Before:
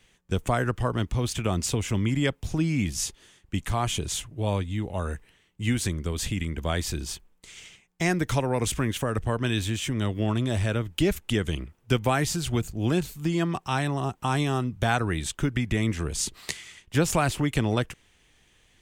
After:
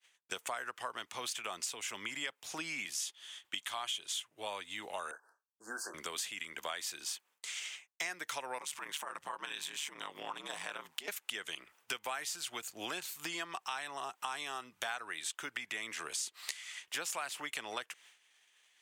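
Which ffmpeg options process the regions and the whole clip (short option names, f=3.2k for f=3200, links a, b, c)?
-filter_complex "[0:a]asettb=1/sr,asplit=3[a][b][c];[a]atrim=end=3.004[d];[b]atrim=start=3:end=4.23,asetpts=PTS-STARTPTS,afade=t=in:d=0.004:c=qsin,afade=t=out:st=1.226:d=0.004:c=qsin,equalizer=f=3.3k:t=o:w=0.3:g=10,bandreject=f=450:w=12[e];[c]atrim=start=4.226[f];[d][e]acrossfade=d=0.004:c1=hsin:c2=qsin[g];[g][f]acrossfade=d=0.004:c1=qsin:c2=hsin,asettb=1/sr,asplit=3[h][i][j];[h]atrim=end=5.114[k];[i]atrim=start=5.11:end=5.94,asetpts=PTS-STARTPTS,afade=t=in:d=0.004:c=qsin,afade=t=out:st=0.826:d=0.004:c=qsin,asuperstop=centerf=2700:order=20:qfactor=0.93,acrossover=split=320 2600:gain=0.0708 1 0.158[l][m][n];[l][m][n]amix=inputs=3:normalize=0,asplit=2[o][p];[p]adelay=27,volume=-10dB[q];[o][q]amix=inputs=2:normalize=0,atrim=end_sample=36603[r];[j]atrim=start=5.936[s];[k][r]acrossfade=d=0.004:c1=hsin:c2=qsin[t];[t][s]acrossfade=d=0.004:c1=qsin:c2=hsin,asettb=1/sr,asplit=3[u][v][w];[u]atrim=end=8.584[x];[v]atrim=start=8.58:end=11.08,asetpts=PTS-STARTPTS,afade=t=in:d=0.004:c=qsin,afade=t=out:st=2.496:d=0.004:c=qsin,equalizer=f=970:t=o:w=0.33:g=10.5,acompressor=threshold=-29dB:ratio=3:attack=3.2:release=140:knee=1:detection=peak,aeval=exprs='val(0)*sin(2*PI*74*n/s)':c=same[y];[w]atrim=start=11.076[z];[x][y]acrossfade=d=0.004:c1=hsin:c2=qsin[aa];[aa][z]acrossfade=d=0.004:c1=qsin:c2=hsin,agate=range=-33dB:threshold=-52dB:ratio=3:detection=peak,highpass=1k,acompressor=threshold=-45dB:ratio=5,volume=7dB"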